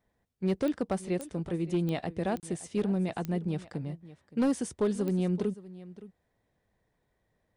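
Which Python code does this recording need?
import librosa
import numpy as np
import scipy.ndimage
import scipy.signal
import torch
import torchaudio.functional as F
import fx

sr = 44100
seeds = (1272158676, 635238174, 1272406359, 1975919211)

y = fx.fix_declip(x, sr, threshold_db=-21.5)
y = fx.fix_declick_ar(y, sr, threshold=10.0)
y = fx.fix_interpolate(y, sr, at_s=(2.4,), length_ms=28.0)
y = fx.fix_echo_inverse(y, sr, delay_ms=569, level_db=-17.5)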